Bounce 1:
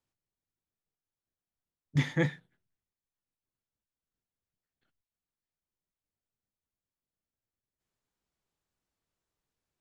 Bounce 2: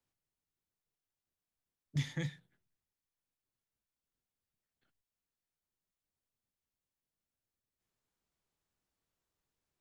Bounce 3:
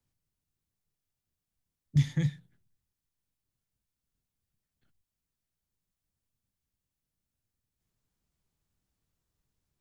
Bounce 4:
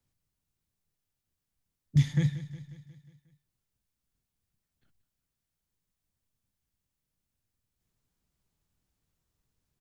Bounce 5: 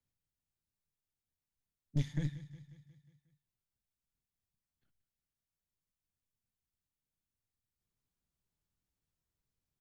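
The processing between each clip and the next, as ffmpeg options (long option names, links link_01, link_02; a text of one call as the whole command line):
ffmpeg -i in.wav -filter_complex "[0:a]acrossover=split=130|3000[link_01][link_02][link_03];[link_02]acompressor=threshold=-41dB:ratio=6[link_04];[link_01][link_04][link_03]amix=inputs=3:normalize=0,volume=-1dB" out.wav
ffmpeg -i in.wav -af "bass=frequency=250:gain=12,treble=frequency=4000:gain=3" out.wav
ffmpeg -i in.wav -af "aecho=1:1:180|360|540|720|900|1080:0.178|0.101|0.0578|0.0329|0.0188|0.0107,volume=1.5dB" out.wav
ffmpeg -i in.wav -af "aeval=exprs='(tanh(10*val(0)+0.75)-tanh(0.75))/10':channel_layout=same,volume=-5dB" out.wav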